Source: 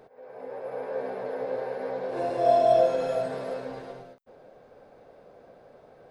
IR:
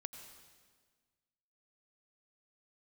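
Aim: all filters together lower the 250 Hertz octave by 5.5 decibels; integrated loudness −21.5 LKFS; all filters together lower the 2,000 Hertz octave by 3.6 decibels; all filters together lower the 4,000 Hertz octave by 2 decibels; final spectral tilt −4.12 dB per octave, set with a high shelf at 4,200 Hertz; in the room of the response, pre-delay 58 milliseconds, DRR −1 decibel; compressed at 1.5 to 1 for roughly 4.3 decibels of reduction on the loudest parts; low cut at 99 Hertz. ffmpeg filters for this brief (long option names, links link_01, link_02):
-filter_complex "[0:a]highpass=99,equalizer=frequency=250:width_type=o:gain=-7.5,equalizer=frequency=2000:width_type=o:gain=-5,equalizer=frequency=4000:width_type=o:gain=-4,highshelf=frequency=4200:gain=5,acompressor=threshold=-29dB:ratio=1.5,asplit=2[link_01][link_02];[1:a]atrim=start_sample=2205,adelay=58[link_03];[link_02][link_03]afir=irnorm=-1:irlink=0,volume=4.5dB[link_04];[link_01][link_04]amix=inputs=2:normalize=0,volume=6dB"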